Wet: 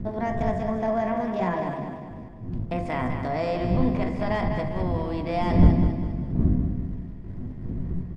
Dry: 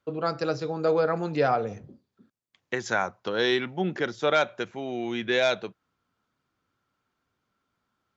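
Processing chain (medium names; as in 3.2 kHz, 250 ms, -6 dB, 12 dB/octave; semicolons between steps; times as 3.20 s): spectral levelling over time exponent 0.6; wind noise 150 Hz -32 dBFS; hum notches 50/100/150/200/250/300 Hz; reverberation RT60 0.90 s, pre-delay 3 ms, DRR 6.5 dB; in parallel at -11 dB: bit crusher 6-bit; on the sum: bass shelf 120 Hz +5 dB; pitch shift +5.5 st; FFT filter 230 Hz 0 dB, 570 Hz -10 dB, 1.2 kHz -12 dB, 7.9 kHz -26 dB; on a send: feedback delay 200 ms, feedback 45%, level -7 dB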